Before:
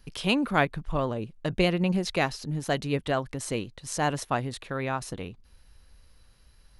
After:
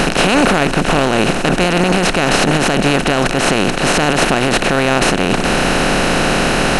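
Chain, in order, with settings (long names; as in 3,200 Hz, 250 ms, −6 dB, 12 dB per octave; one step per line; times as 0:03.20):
compressor on every frequency bin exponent 0.2
boost into a limiter +11 dB
level −1 dB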